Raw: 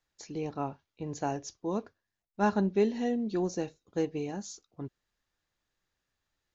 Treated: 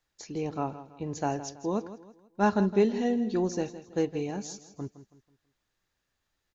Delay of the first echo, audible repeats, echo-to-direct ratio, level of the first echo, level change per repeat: 163 ms, 3, -13.5 dB, -14.0 dB, -8.5 dB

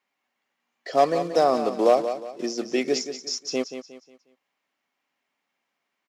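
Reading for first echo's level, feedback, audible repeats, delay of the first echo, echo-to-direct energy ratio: -10.0 dB, 35%, 3, 180 ms, -9.5 dB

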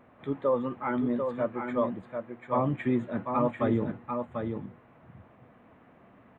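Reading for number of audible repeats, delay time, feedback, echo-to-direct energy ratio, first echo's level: 1, 742 ms, no regular repeats, -5.5 dB, -5.5 dB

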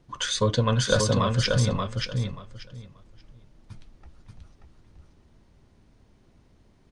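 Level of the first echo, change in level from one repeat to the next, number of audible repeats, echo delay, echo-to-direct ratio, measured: -4.0 dB, -15.0 dB, 3, 583 ms, -4.0 dB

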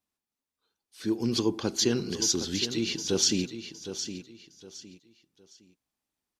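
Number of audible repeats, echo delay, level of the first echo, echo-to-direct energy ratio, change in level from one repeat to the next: 3, 762 ms, -10.5 dB, -10.0 dB, -11.0 dB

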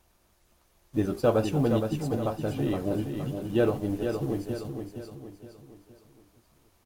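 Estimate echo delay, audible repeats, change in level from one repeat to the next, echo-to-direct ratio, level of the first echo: 467 ms, 4, -7.5 dB, -5.5 dB, -6.5 dB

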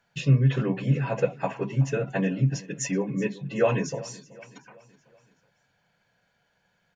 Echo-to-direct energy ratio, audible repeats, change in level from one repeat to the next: -19.0 dB, 3, -6.0 dB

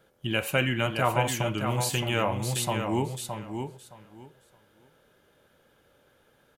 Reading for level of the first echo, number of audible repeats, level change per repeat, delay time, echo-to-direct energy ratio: -6.5 dB, 2, -14.5 dB, 618 ms, -6.5 dB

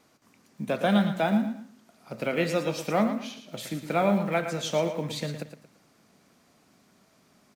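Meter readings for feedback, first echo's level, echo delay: 31%, -9.5 dB, 113 ms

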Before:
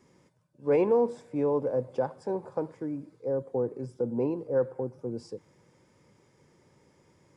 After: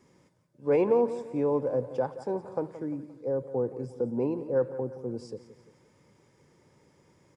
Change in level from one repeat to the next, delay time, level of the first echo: -7.0 dB, 174 ms, -14.0 dB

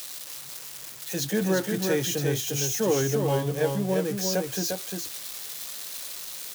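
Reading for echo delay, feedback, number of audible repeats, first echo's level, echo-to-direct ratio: 350 ms, no regular repeats, 1, -4.5 dB, -4.5 dB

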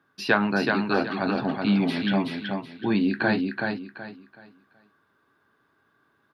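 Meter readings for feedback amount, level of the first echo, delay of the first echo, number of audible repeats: 28%, -4.0 dB, 376 ms, 3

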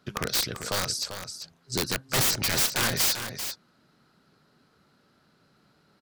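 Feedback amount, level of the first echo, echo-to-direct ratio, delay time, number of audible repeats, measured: no regular repeats, -9.0 dB, -9.0 dB, 392 ms, 1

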